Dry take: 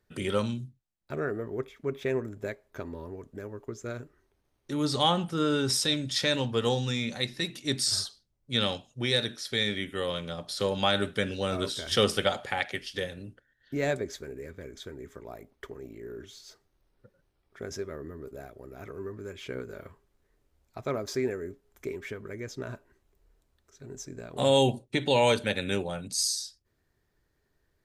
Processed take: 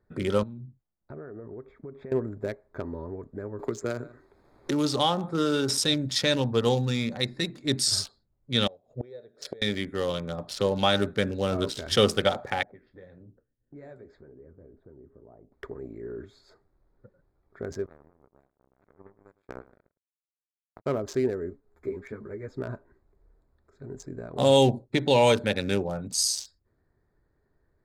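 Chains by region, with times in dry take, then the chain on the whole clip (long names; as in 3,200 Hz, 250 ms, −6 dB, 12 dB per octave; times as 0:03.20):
0:00.43–0:02.12: low-pass filter 2,100 Hz 6 dB per octave + downward compressor 8 to 1, threshold −41 dBFS
0:03.59–0:05.78: low-shelf EQ 200 Hz −7 dB + single-tap delay 143 ms −21 dB + multiband upward and downward compressor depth 70%
0:08.67–0:09.62: flat-topped bell 520 Hz +13 dB 1.1 octaves + gate with flip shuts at −24 dBFS, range −28 dB + highs frequency-modulated by the lows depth 0.13 ms
0:12.63–0:15.52: low-pass that shuts in the quiet parts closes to 310 Hz, open at −26.5 dBFS + downward compressor 2.5 to 1, threshold −50 dBFS + flanger 1.8 Hz, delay 5.7 ms, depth 9.4 ms, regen −60%
0:17.86–0:20.86: high-pass filter 51 Hz + power curve on the samples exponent 3 + single-tap delay 108 ms −18.5 dB
0:21.50–0:22.54: floating-point word with a short mantissa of 4 bits + string-ensemble chorus
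whole clip: adaptive Wiener filter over 15 samples; dynamic equaliser 1,900 Hz, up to −3 dB, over −42 dBFS, Q 0.73; level +4 dB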